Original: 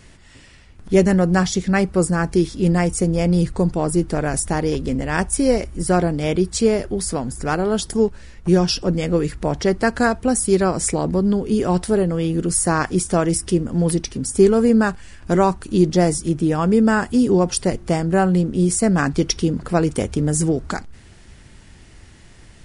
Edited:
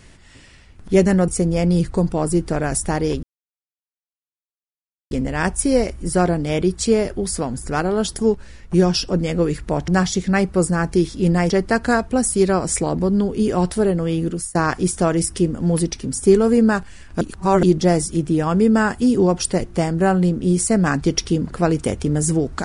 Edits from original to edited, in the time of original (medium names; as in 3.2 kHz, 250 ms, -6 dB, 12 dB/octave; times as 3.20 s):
1.28–2.90 s: move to 9.62 s
4.85 s: insert silence 1.88 s
12.34–12.67 s: fade out, to -24 dB
15.33–15.75 s: reverse